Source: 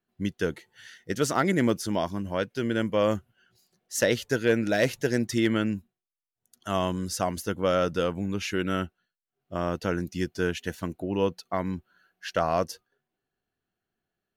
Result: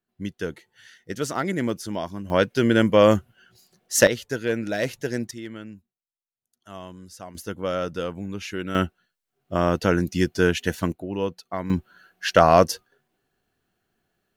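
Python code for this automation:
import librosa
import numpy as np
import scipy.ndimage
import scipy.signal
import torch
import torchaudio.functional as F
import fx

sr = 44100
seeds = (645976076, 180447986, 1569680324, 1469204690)

y = fx.gain(x, sr, db=fx.steps((0.0, -2.0), (2.3, 8.5), (4.07, -2.0), (5.31, -12.5), (7.35, -2.5), (8.75, 7.5), (10.92, -1.0), (11.7, 10.5)))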